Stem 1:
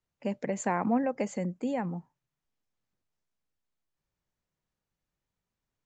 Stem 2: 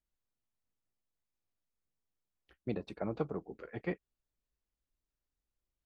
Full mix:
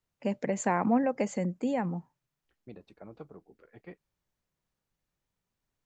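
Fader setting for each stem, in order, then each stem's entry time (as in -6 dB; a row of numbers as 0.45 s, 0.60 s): +1.5 dB, -11.0 dB; 0.00 s, 0.00 s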